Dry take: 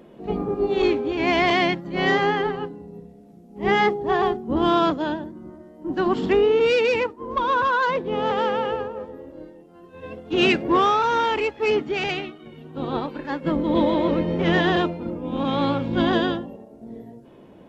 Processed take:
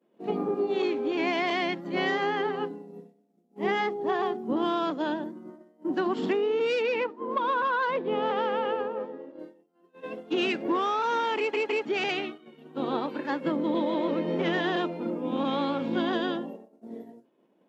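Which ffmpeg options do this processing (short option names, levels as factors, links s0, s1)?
-filter_complex "[0:a]asettb=1/sr,asplit=3[s0][s1][s2];[s0]atrim=end=6.824[s3];[s1]atrim=start=6.82:end=9.39,asetpts=PTS-STARTPTS,afade=t=in:d=0.004:c=qsin,afade=t=out:st=2.566:d=0.004:c=qsin,lowpass=4100[s4];[s2]atrim=start=9.386[s5];[s3][s4]acrossfade=d=0.004:c1=hsin:c2=qsin[s6];[s6][s5]acrossfade=d=0.004:c1=qsin:c2=hsin,asplit=4[s7][s8][s9][s10];[s7]atrim=end=11.532[s11];[s8]atrim=start=11.368:end=11.532[s12];[s9]atrim=start=11.368:end=11.532[s13];[s10]atrim=start=11.848[s14];[s11][s12]acrossfade=d=0.004:c1=hsin:c2=hsin[s15];[s15][s13]acrossfade=d=0.004:c1=hsin:c2=hsin[s16];[s16][s14]acrossfade=d=0.004:c1=hsin:c2=hsin,agate=range=0.0224:threshold=0.0178:ratio=3:detection=peak,highpass=f=200:w=0.5412,highpass=f=200:w=1.3066,acompressor=threshold=0.0631:ratio=6"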